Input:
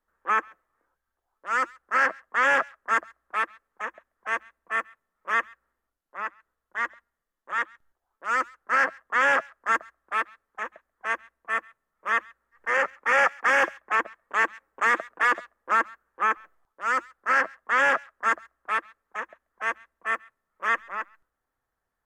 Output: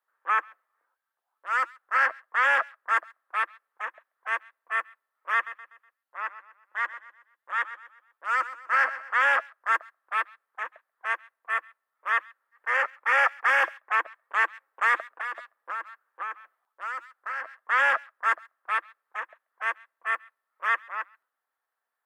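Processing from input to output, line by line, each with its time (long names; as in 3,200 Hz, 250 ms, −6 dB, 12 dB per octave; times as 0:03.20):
0:05.34–0:09.29: repeating echo 123 ms, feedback 40%, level −14 dB
0:15.09–0:17.58: downward compressor, threshold −29 dBFS
whole clip: high-pass filter 740 Hz 12 dB per octave; parametric band 6,500 Hz −10 dB 0.61 octaves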